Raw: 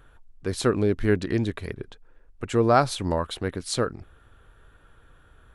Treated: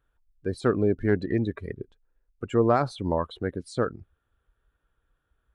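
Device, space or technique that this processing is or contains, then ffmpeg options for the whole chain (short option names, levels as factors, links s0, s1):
de-esser from a sidechain: -filter_complex "[0:a]afftdn=nr=20:nf=-33,asplit=2[s0][s1];[s1]highpass=4300,apad=whole_len=244618[s2];[s0][s2]sidechaincompress=threshold=0.00562:ratio=5:attack=3.6:release=20,highpass=f=82:p=1"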